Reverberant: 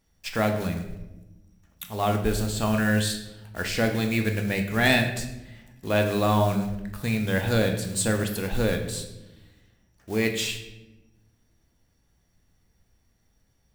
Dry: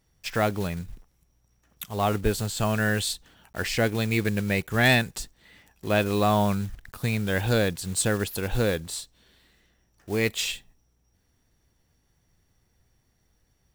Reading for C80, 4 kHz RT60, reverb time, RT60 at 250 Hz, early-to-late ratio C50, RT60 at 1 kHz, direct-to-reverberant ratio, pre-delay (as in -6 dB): 10.0 dB, 0.70 s, 1.0 s, 1.7 s, 8.0 dB, 0.80 s, 4.0 dB, 3 ms